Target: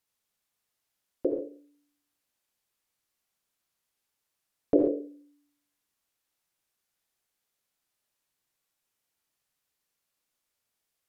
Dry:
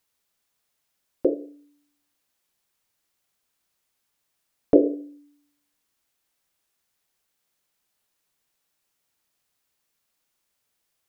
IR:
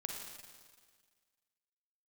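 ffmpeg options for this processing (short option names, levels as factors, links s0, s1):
-filter_complex "[1:a]atrim=start_sample=2205,atrim=end_sample=4410,asetrate=30429,aresample=44100[s0];[0:a][s0]afir=irnorm=-1:irlink=0,volume=0.531"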